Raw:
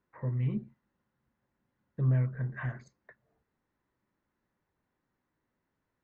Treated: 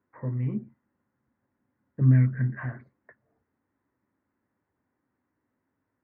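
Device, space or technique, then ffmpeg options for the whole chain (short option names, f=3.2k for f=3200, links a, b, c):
bass cabinet: -filter_complex "[0:a]asettb=1/sr,asplit=3[a][b][c];[a]atrim=end=2.014[d];[b]atrim=start=2.01:end=2.55,asetpts=PTS-STARTPTS,afade=t=in:d=0.004:c=qsin,afade=t=out:st=0.536:d=0.004:c=qsin,equalizer=f=125:t=o:w=1:g=5,equalizer=f=250:t=o:w=1:g=7,equalizer=f=500:t=o:w=1:g=-6,equalizer=f=1k:t=o:w=1:g=-5,equalizer=f=2k:t=o:w=1:g=11[e];[c]atrim=start=2.546[f];[d][e]acrossfade=d=0.004:c1=hsin:c2=qsin[g];[g][f]acrossfade=d=0.004:c1=qsin:c2=hsin,highpass=76,equalizer=f=93:t=q:w=4:g=5,equalizer=f=160:t=q:w=4:g=-4,equalizer=f=270:t=q:w=4:g=7,lowpass=f=2.2k:w=0.5412,lowpass=f=2.2k:w=1.3066,volume=2dB"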